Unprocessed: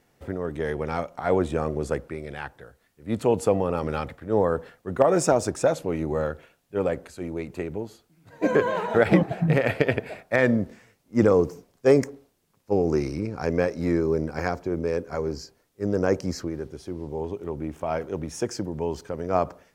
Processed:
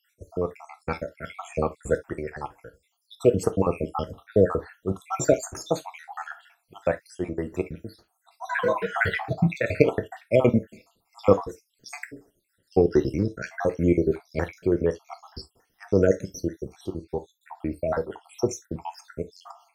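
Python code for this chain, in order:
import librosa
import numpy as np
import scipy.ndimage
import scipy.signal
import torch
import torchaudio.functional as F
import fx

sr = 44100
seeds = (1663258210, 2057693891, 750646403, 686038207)

y = fx.spec_dropout(x, sr, seeds[0], share_pct=72)
y = fx.rev_gated(y, sr, seeds[1], gate_ms=90, shape='falling', drr_db=8.0)
y = y * librosa.db_to_amplitude(4.5)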